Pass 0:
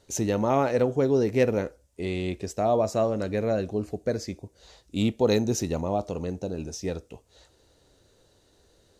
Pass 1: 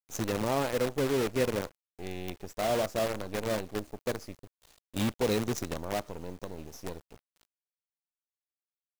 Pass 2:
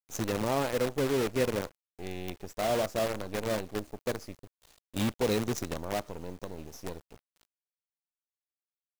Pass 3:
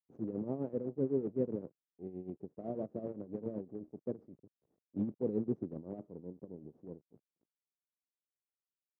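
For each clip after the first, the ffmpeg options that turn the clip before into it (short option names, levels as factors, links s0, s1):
-af "acrusher=bits=5:dc=4:mix=0:aa=0.000001,volume=0.473"
-af anull
-af "tremolo=f=7.8:d=0.7,asuperpass=centerf=240:order=4:qfactor=0.85"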